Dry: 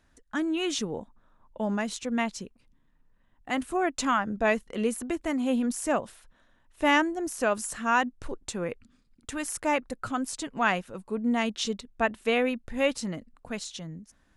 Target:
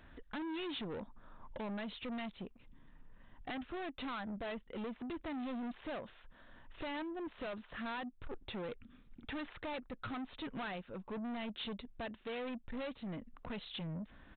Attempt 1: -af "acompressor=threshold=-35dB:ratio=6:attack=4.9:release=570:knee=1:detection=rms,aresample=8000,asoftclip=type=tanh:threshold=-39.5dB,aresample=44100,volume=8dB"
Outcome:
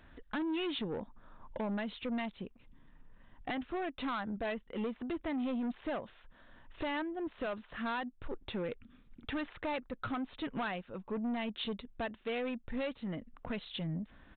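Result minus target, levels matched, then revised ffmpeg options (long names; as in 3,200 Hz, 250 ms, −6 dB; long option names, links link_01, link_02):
soft clipping: distortion −5 dB
-af "acompressor=threshold=-35dB:ratio=6:attack=4.9:release=570:knee=1:detection=rms,aresample=8000,asoftclip=type=tanh:threshold=-47dB,aresample=44100,volume=8dB"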